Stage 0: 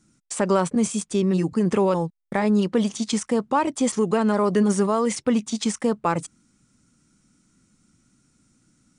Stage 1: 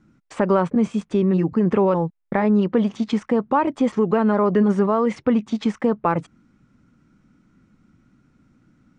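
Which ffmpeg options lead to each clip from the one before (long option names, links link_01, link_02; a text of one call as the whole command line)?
ffmpeg -i in.wav -filter_complex "[0:a]lowpass=2100,asplit=2[link_01][link_02];[link_02]acompressor=threshold=-28dB:ratio=6,volume=0dB[link_03];[link_01][link_03]amix=inputs=2:normalize=0" out.wav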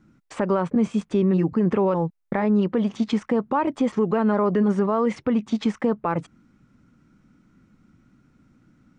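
ffmpeg -i in.wav -af "alimiter=limit=-13dB:level=0:latency=1:release=192" out.wav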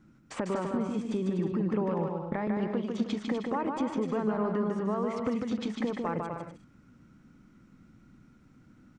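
ffmpeg -i in.wav -af "acompressor=threshold=-28dB:ratio=4,aecho=1:1:150|247.5|310.9|352.1|378.8:0.631|0.398|0.251|0.158|0.1,volume=-2dB" out.wav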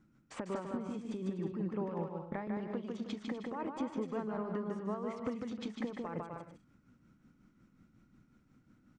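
ffmpeg -i in.wav -af "tremolo=f=5.5:d=0.49,volume=-6dB" out.wav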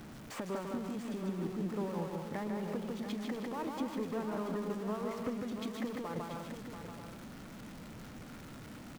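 ffmpeg -i in.wav -af "aeval=exprs='val(0)+0.5*0.00794*sgn(val(0))':channel_layout=same,aecho=1:1:684:0.355,volume=-1.5dB" out.wav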